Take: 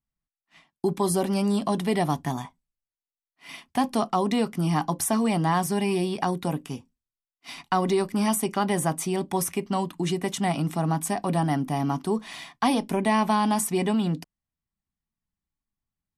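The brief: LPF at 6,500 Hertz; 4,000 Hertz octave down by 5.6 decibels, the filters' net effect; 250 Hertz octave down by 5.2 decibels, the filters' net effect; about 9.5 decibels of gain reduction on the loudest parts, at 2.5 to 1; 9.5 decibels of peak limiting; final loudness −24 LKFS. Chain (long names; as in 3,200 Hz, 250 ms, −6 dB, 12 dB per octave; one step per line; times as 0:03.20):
low-pass filter 6,500 Hz
parametric band 250 Hz −7.5 dB
parametric band 4,000 Hz −7.5 dB
downward compressor 2.5 to 1, threshold −35 dBFS
level +14 dB
brickwall limiter −12.5 dBFS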